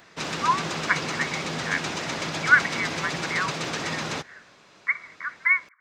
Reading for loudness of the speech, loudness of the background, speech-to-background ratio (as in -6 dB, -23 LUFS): -26.0 LUFS, -29.5 LUFS, 3.5 dB